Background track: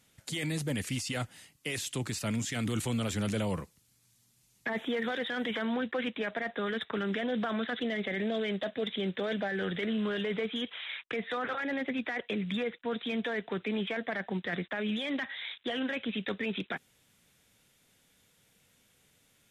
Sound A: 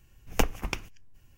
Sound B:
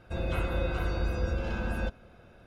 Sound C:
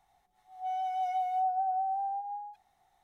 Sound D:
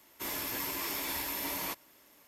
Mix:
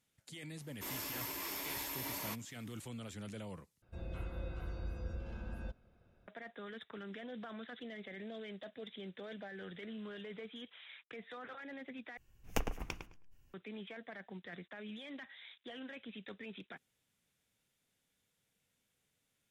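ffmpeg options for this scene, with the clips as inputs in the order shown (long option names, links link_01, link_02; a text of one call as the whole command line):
ffmpeg -i bed.wav -i cue0.wav -i cue1.wav -i cue2.wav -i cue3.wav -filter_complex "[0:a]volume=-14.5dB[link_01];[2:a]lowshelf=frequency=300:gain=6.5[link_02];[1:a]asplit=2[link_03][link_04];[link_04]adelay=106,lowpass=frequency=1800:poles=1,volume=-5dB,asplit=2[link_05][link_06];[link_06]adelay=106,lowpass=frequency=1800:poles=1,volume=0.2,asplit=2[link_07][link_08];[link_08]adelay=106,lowpass=frequency=1800:poles=1,volume=0.2[link_09];[link_03][link_05][link_07][link_09]amix=inputs=4:normalize=0[link_10];[link_01]asplit=3[link_11][link_12][link_13];[link_11]atrim=end=3.824[link_14];[link_02]atrim=end=2.46,asetpts=PTS-STARTPTS,volume=-17.5dB[link_15];[link_12]atrim=start=6.276:end=12.174[link_16];[link_10]atrim=end=1.37,asetpts=PTS-STARTPTS,volume=-10.5dB[link_17];[link_13]atrim=start=13.536[link_18];[4:a]atrim=end=2.27,asetpts=PTS-STARTPTS,volume=-6dB,afade=type=in:duration=0.004:curve=hsin,afade=type=out:start_time=2.266:duration=0.004:curve=hsin,adelay=610[link_19];[link_14][link_15]acrossfade=duration=0.004:curve1=hsin:curve2=hsin[link_20];[link_20][link_16]acrossfade=duration=0.004:curve1=hsin:curve2=hsin[link_21];[link_21][link_17]acrossfade=duration=0.004:curve1=hsin:curve2=hsin[link_22];[link_22][link_18]acrossfade=duration=0.004:curve1=hsin:curve2=hsin[link_23];[link_23][link_19]amix=inputs=2:normalize=0" out.wav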